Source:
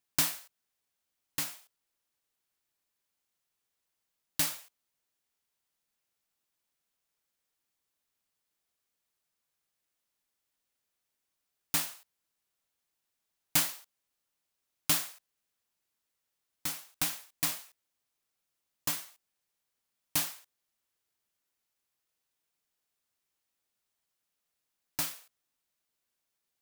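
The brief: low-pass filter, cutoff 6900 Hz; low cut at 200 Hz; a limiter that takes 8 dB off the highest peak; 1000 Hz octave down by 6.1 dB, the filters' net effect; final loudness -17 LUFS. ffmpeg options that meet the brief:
-af "highpass=200,lowpass=6.9k,equalizer=f=1k:t=o:g=-8,volume=24dB,alimiter=limit=0dB:level=0:latency=1"

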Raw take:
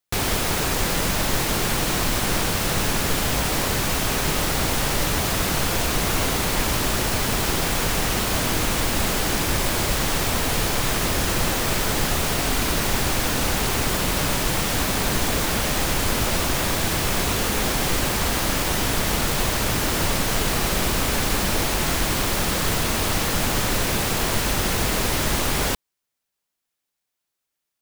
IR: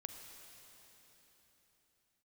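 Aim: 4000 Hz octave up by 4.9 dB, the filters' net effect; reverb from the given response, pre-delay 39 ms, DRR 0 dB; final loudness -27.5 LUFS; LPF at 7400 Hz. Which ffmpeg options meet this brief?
-filter_complex "[0:a]lowpass=7.4k,equalizer=f=4k:t=o:g=6.5,asplit=2[a][b];[1:a]atrim=start_sample=2205,adelay=39[c];[b][c]afir=irnorm=-1:irlink=0,volume=3.5dB[d];[a][d]amix=inputs=2:normalize=0,volume=-9.5dB"

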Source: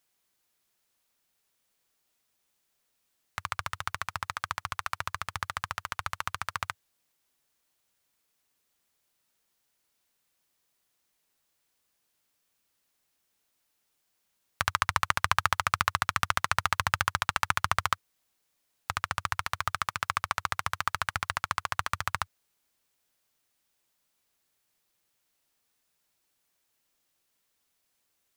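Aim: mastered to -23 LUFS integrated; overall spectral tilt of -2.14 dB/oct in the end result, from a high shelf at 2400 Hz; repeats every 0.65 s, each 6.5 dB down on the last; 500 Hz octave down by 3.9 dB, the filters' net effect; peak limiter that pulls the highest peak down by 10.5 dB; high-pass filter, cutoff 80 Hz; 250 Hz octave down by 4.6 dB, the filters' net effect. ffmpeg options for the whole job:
-af "highpass=80,equalizer=f=250:t=o:g=-7.5,equalizer=f=500:t=o:g=-3.5,highshelf=f=2.4k:g=-7,alimiter=limit=-18dB:level=0:latency=1,aecho=1:1:650|1300|1950|2600|3250|3900:0.473|0.222|0.105|0.0491|0.0231|0.0109,volume=16dB"

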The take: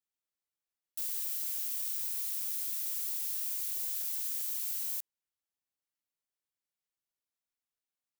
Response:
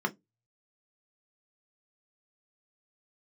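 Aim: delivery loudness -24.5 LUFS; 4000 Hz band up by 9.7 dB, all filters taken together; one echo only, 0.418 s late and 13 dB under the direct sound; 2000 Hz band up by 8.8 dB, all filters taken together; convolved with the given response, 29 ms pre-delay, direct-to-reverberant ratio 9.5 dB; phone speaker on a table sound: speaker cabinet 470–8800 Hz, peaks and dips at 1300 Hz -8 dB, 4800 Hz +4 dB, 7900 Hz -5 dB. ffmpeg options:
-filter_complex "[0:a]equalizer=f=2k:t=o:g=9,equalizer=f=4k:t=o:g=8,aecho=1:1:418:0.224,asplit=2[a][b];[1:a]atrim=start_sample=2205,adelay=29[c];[b][c]afir=irnorm=-1:irlink=0,volume=-17.5dB[d];[a][d]amix=inputs=2:normalize=0,highpass=f=470:w=0.5412,highpass=f=470:w=1.3066,equalizer=f=1.3k:t=q:w=4:g=-8,equalizer=f=4.8k:t=q:w=4:g=4,equalizer=f=7.9k:t=q:w=4:g=-5,lowpass=f=8.8k:w=0.5412,lowpass=f=8.8k:w=1.3066,volume=14.5dB"

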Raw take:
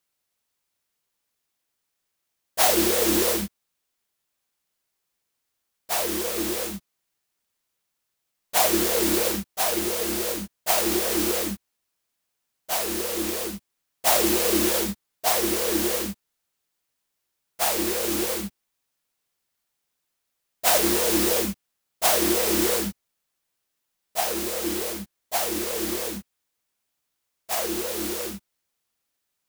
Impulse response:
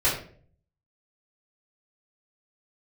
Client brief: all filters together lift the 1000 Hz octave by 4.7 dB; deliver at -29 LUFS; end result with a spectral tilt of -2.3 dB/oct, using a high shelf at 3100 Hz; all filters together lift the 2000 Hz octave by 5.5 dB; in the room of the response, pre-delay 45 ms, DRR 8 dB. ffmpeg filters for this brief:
-filter_complex "[0:a]equalizer=f=1k:t=o:g=5.5,equalizer=f=2k:t=o:g=6.5,highshelf=f=3.1k:g=-3.5,asplit=2[a][b];[1:a]atrim=start_sample=2205,adelay=45[c];[b][c]afir=irnorm=-1:irlink=0,volume=-21.5dB[d];[a][d]amix=inputs=2:normalize=0,volume=-6dB"

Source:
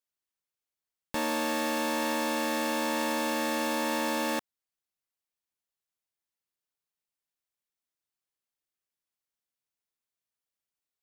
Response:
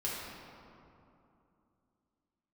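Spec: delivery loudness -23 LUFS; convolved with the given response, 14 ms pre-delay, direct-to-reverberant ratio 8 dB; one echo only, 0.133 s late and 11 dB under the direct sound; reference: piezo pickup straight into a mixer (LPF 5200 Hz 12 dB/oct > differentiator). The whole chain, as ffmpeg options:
-filter_complex "[0:a]aecho=1:1:133:0.282,asplit=2[a][b];[1:a]atrim=start_sample=2205,adelay=14[c];[b][c]afir=irnorm=-1:irlink=0,volume=-12.5dB[d];[a][d]amix=inputs=2:normalize=0,lowpass=5.2k,aderivative,volume=18dB"

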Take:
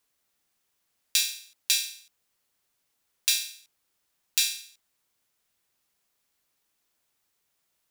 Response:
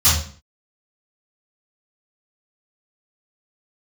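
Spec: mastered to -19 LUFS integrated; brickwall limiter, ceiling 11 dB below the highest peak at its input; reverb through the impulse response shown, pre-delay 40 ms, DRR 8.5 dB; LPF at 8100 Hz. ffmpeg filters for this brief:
-filter_complex "[0:a]lowpass=8.1k,alimiter=limit=-17.5dB:level=0:latency=1,asplit=2[a][b];[1:a]atrim=start_sample=2205,adelay=40[c];[b][c]afir=irnorm=-1:irlink=0,volume=-28dB[d];[a][d]amix=inputs=2:normalize=0,volume=13.5dB"

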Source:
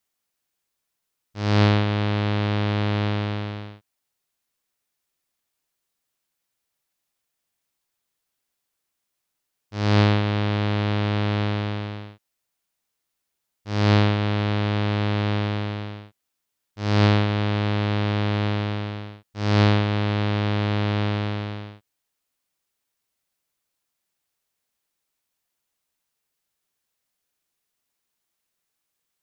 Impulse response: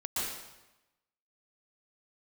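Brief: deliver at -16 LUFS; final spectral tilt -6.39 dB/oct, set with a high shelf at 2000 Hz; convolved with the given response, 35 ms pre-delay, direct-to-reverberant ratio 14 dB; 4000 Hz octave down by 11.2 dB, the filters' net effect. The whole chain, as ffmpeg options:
-filter_complex "[0:a]highshelf=f=2k:g=-7,equalizer=f=4k:t=o:g=-8,asplit=2[a][b];[1:a]atrim=start_sample=2205,adelay=35[c];[b][c]afir=irnorm=-1:irlink=0,volume=-19.5dB[d];[a][d]amix=inputs=2:normalize=0,volume=9.5dB"

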